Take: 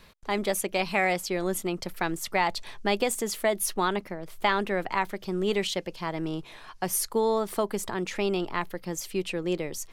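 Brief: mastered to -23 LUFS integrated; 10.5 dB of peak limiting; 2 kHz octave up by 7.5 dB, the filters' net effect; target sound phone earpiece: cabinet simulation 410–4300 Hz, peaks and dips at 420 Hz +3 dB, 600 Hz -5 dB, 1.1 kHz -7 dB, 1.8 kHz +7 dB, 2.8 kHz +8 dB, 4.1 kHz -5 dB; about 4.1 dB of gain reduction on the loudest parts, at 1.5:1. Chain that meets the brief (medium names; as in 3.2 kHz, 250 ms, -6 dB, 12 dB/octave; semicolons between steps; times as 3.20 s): peaking EQ 2 kHz +3 dB; compression 1.5:1, threshold -31 dBFS; peak limiter -22 dBFS; cabinet simulation 410–4300 Hz, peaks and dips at 420 Hz +3 dB, 600 Hz -5 dB, 1.1 kHz -7 dB, 1.8 kHz +7 dB, 2.8 kHz +8 dB, 4.1 kHz -5 dB; trim +11.5 dB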